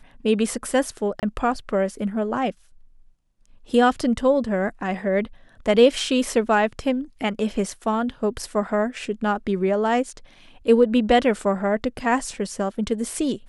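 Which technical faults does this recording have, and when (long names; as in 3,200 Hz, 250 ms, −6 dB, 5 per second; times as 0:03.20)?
0:01.20–0:01.23: drop-out 28 ms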